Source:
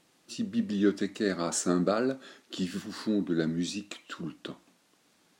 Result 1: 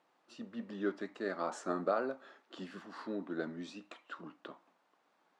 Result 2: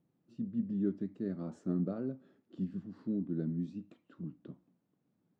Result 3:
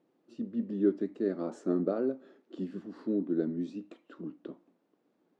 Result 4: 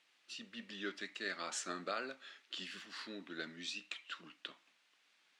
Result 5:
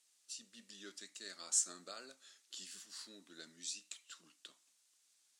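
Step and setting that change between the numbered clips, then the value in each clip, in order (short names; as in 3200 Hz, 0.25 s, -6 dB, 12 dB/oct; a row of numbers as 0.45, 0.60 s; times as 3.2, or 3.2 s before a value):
band-pass, frequency: 910, 130, 360, 2500, 8000 Hz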